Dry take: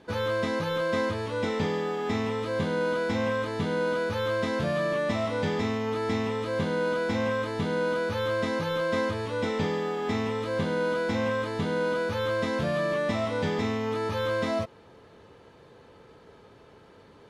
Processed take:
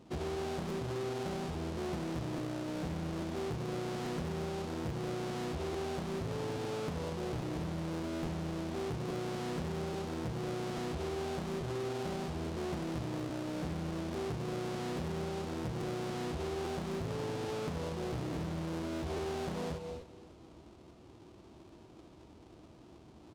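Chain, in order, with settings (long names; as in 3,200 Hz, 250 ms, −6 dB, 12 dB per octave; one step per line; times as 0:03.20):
each half-wave held at its own peak
high-pass filter 47 Hz 12 dB per octave
parametric band 2,400 Hz −9 dB 0.98 octaves
mains-hum notches 60/120/180/240 Hz
wrong playback speed 45 rpm record played at 33 rpm
high-frequency loss of the air 58 metres
on a send: repeating echo 285 ms, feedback 46%, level −24 dB
on the sum: reverb whose tail is shaped and stops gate 270 ms rising, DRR 12 dB
downward compressor, threshold −28 dBFS, peak gain reduction 9 dB
regular buffer underruns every 0.84 s, samples 512, repeat, from 0:00.68
highs frequency-modulated by the lows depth 0.8 ms
level −6.5 dB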